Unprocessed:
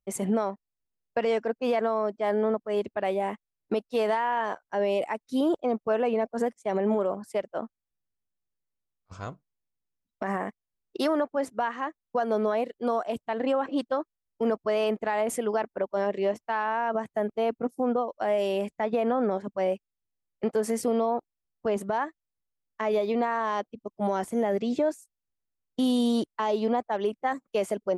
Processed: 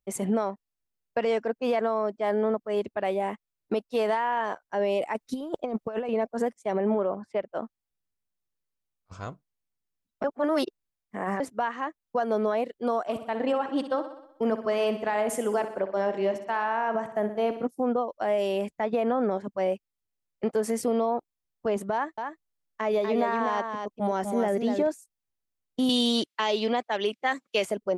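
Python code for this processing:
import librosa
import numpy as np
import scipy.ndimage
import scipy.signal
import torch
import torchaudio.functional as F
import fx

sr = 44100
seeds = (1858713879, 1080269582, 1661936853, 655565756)

y = fx.over_compress(x, sr, threshold_db=-29.0, ratio=-0.5, at=(5.15, 6.09))
y = fx.lowpass(y, sr, hz=2900.0, slope=12, at=(6.73, 7.53))
y = fx.echo_feedback(y, sr, ms=62, feedback_pct=58, wet_db=-11, at=(13.07, 17.65), fade=0.02)
y = fx.echo_single(y, sr, ms=245, db=-5.5, at=(21.93, 24.87))
y = fx.weighting(y, sr, curve='D', at=(25.89, 27.65))
y = fx.edit(y, sr, fx.reverse_span(start_s=10.24, length_s=1.16), tone=tone)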